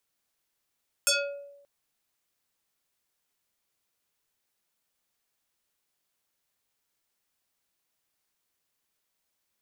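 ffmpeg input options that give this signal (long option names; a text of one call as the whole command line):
ffmpeg -f lavfi -i "aevalsrc='0.119*pow(10,-3*t/0.91)*sin(2*PI*567*t+5.8*pow(10,-3*t/0.52)*sin(2*PI*3.5*567*t))':duration=0.58:sample_rate=44100" out.wav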